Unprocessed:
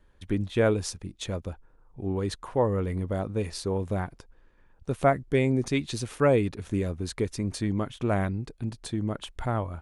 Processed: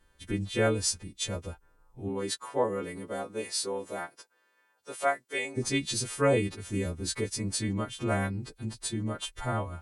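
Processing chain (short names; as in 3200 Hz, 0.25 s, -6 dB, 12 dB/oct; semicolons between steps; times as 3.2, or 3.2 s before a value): frequency quantiser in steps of 2 st; 2.08–5.56 HPF 180 Hz -> 720 Hz 12 dB/oct; gain -2.5 dB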